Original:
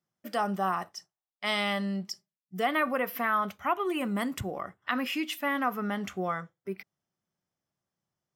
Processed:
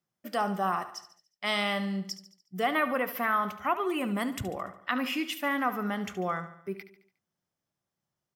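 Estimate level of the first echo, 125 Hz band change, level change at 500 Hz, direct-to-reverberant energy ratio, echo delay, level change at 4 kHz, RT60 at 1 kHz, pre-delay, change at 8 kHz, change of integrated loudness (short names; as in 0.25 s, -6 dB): -13.0 dB, 0.0 dB, 0.0 dB, none, 72 ms, +0.5 dB, none, none, +0.5 dB, 0.0 dB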